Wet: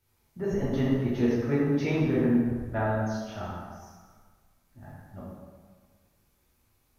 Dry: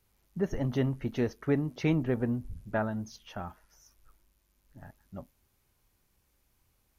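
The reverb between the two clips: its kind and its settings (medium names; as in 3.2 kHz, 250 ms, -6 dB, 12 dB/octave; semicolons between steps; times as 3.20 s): plate-style reverb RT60 1.6 s, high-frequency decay 0.65×, DRR -8 dB; trim -5 dB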